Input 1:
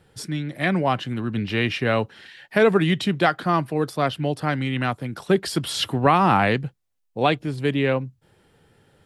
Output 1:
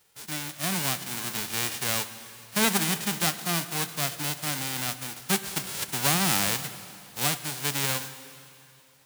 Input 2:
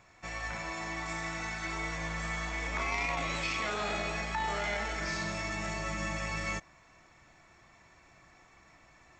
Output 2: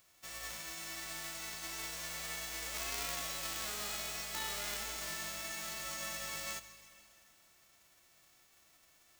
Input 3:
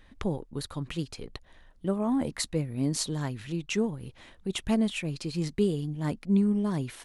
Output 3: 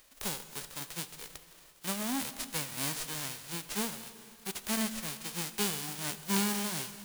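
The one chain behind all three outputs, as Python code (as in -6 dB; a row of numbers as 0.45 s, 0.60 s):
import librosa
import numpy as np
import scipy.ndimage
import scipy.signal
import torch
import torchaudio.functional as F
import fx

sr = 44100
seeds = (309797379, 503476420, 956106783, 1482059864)

y = fx.envelope_flatten(x, sr, power=0.1)
y = fx.rev_plate(y, sr, seeds[0], rt60_s=2.8, hf_ratio=0.95, predelay_ms=0, drr_db=11.5)
y = y * librosa.db_to_amplitude(-7.0)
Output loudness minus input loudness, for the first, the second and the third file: -4.5 LU, -5.0 LU, -4.5 LU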